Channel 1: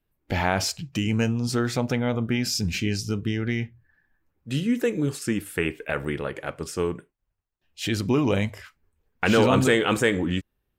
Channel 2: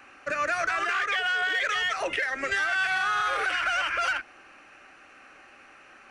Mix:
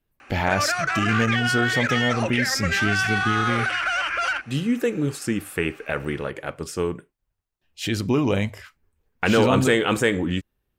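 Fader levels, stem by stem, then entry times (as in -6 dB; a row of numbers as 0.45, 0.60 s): +1.0, +2.5 dB; 0.00, 0.20 s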